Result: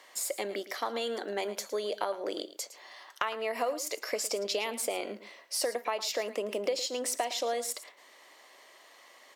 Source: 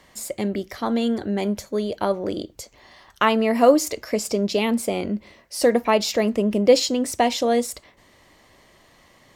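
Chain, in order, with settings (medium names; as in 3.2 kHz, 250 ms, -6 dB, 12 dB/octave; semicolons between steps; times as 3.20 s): Bessel high-pass 560 Hz, order 4; compression 10:1, threshold -28 dBFS, peak gain reduction 16 dB; delay 110 ms -14.5 dB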